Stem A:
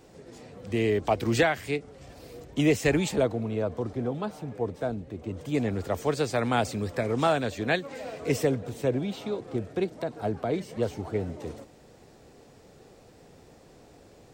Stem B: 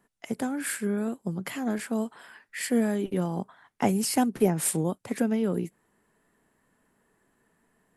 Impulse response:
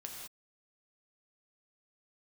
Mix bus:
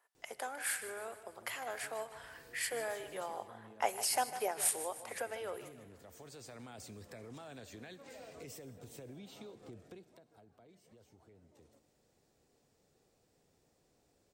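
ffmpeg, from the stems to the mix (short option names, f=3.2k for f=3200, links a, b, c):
-filter_complex "[0:a]alimiter=limit=-22.5dB:level=0:latency=1:release=15,highshelf=f=4.9k:g=10.5,acompressor=threshold=-40dB:ratio=4,adelay=150,volume=-10.5dB,afade=t=in:st=1.37:d=0.39:silence=0.398107,afade=t=out:st=9.8:d=0.42:silence=0.251189,asplit=2[a][b];[b]volume=-9.5dB[c];[1:a]highpass=f=560:w=0.5412,highpass=f=560:w=1.3066,bandreject=f=7.5k:w=23,volume=-5dB,asplit=4[d][e][f][g];[e]volume=-11.5dB[h];[f]volume=-13dB[i];[g]apad=whole_len=638993[j];[a][j]sidechaincompress=threshold=-49dB:ratio=8:attack=16:release=1240[k];[2:a]atrim=start_sample=2205[l];[c][h]amix=inputs=2:normalize=0[m];[m][l]afir=irnorm=-1:irlink=0[n];[i]aecho=0:1:153|306|459|612|765|918|1071:1|0.49|0.24|0.118|0.0576|0.0282|0.0138[o];[k][d][n][o]amix=inputs=4:normalize=0"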